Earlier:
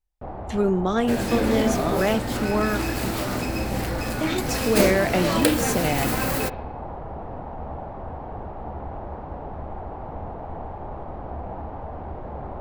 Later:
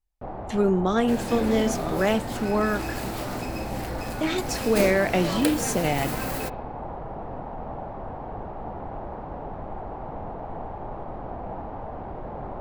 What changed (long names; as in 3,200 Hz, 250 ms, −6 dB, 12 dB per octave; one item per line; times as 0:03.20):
first sound: add parametric band 74 Hz −10 dB 0.38 octaves
second sound −6.0 dB